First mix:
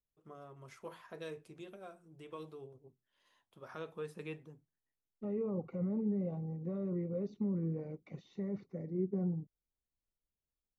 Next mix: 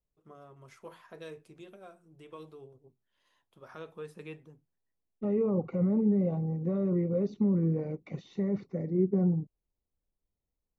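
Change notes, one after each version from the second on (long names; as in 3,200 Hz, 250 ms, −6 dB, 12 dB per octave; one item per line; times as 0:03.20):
second voice +8.5 dB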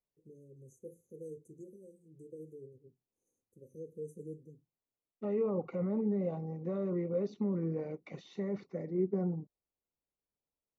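first voice: add linear-phase brick-wall band-stop 550–5,900 Hz
second voice: add high-pass filter 420 Hz 6 dB per octave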